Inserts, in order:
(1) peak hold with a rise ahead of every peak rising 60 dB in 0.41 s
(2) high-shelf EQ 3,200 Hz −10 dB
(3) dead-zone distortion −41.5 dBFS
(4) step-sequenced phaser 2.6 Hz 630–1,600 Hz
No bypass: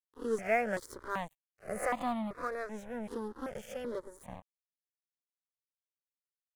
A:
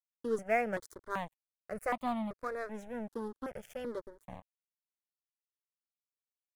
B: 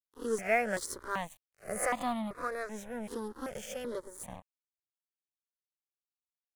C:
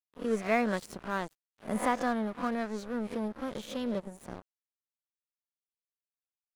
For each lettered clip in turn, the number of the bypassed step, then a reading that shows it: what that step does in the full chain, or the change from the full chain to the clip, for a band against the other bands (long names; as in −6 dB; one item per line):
1, 8 kHz band −5.5 dB
2, 8 kHz band +9.0 dB
4, 4 kHz band +5.0 dB